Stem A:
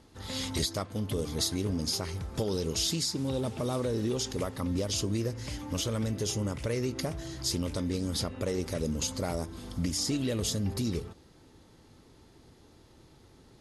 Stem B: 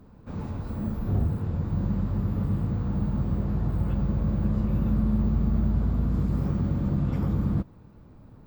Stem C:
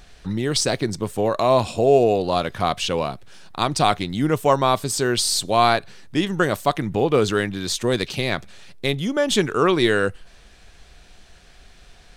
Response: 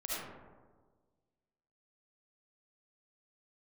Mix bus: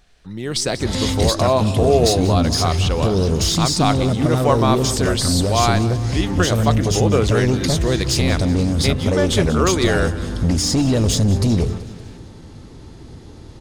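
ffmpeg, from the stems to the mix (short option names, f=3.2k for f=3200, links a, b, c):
-filter_complex "[0:a]lowpass=f=10k:w=0.5412,lowpass=f=10k:w=1.3066,lowshelf=f=250:g=9,asoftclip=type=tanh:threshold=-24dB,adelay=650,volume=3dB,asplit=2[a][b];[b]volume=-16.5dB[c];[1:a]adelay=1350,volume=-15.5dB,asplit=2[d][e];[e]volume=-9dB[f];[2:a]volume=-9dB,asplit=3[g][h][i];[h]volume=-15.5dB[j];[i]apad=whole_len=432826[k];[d][k]sidechaincompress=threshold=-31dB:ratio=8:attack=16:release=390[l];[c][f][j]amix=inputs=3:normalize=0,aecho=0:1:189|378|567|756|945|1134|1323|1512:1|0.54|0.292|0.157|0.085|0.0459|0.0248|0.0134[m];[a][l][g][m]amix=inputs=4:normalize=0,dynaudnorm=f=300:g=3:m=9.5dB"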